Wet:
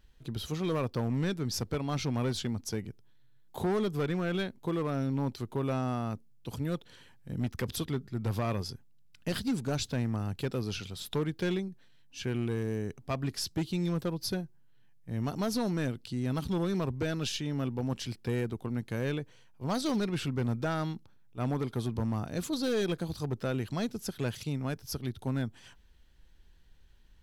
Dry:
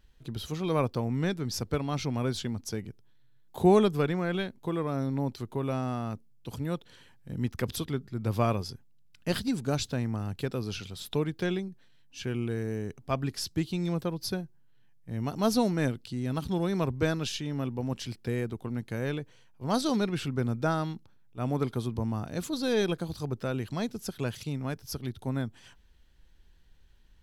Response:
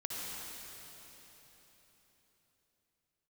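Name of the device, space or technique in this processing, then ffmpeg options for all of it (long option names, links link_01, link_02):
limiter into clipper: -af "alimiter=limit=-19dB:level=0:latency=1:release=202,asoftclip=type=hard:threshold=-25dB"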